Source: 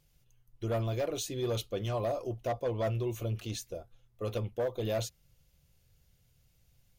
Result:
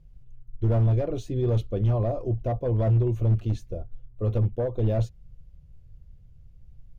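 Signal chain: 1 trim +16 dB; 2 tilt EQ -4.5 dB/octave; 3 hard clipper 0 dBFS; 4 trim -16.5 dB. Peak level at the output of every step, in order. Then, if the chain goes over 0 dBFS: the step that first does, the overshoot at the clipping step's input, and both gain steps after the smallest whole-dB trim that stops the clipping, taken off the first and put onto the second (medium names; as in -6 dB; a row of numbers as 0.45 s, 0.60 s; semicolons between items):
-8.0 dBFS, +4.5 dBFS, 0.0 dBFS, -16.5 dBFS; step 2, 4.5 dB; step 1 +11 dB, step 4 -11.5 dB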